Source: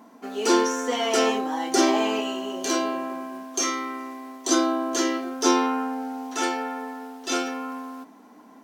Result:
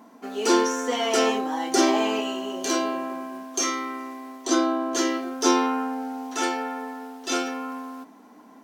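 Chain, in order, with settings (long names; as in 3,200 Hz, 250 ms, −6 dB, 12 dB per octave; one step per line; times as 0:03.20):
0:04.44–0:04.96: high-shelf EQ 5,800 Hz −8 dB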